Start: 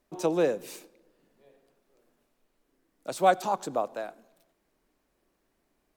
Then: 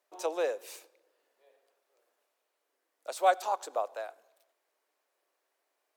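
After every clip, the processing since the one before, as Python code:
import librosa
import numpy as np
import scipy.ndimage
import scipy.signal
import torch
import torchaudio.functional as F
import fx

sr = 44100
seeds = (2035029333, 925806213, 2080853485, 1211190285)

y = scipy.signal.sosfilt(scipy.signal.butter(4, 480.0, 'highpass', fs=sr, output='sos'), x)
y = y * 10.0 ** (-2.5 / 20.0)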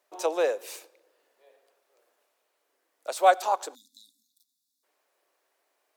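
y = fx.spec_erase(x, sr, start_s=3.74, length_s=1.09, low_hz=290.0, high_hz=3400.0)
y = y * 10.0 ** (5.5 / 20.0)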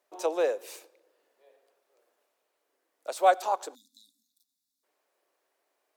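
y = fx.peak_eq(x, sr, hz=250.0, db=4.0, octaves=2.9)
y = y * 10.0 ** (-4.0 / 20.0)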